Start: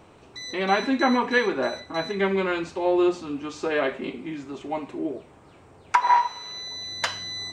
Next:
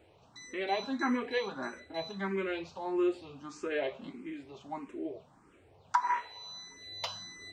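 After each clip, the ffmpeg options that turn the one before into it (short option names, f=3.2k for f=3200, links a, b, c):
-filter_complex "[0:a]asplit=2[a][b];[b]afreqshift=1.6[c];[a][c]amix=inputs=2:normalize=1,volume=-7.5dB"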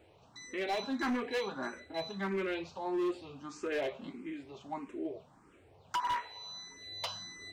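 -af "asoftclip=type=hard:threshold=-29dB"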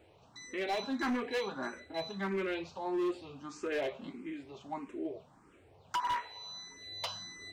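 -af anull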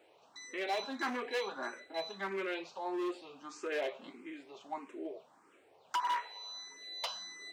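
-af "highpass=390"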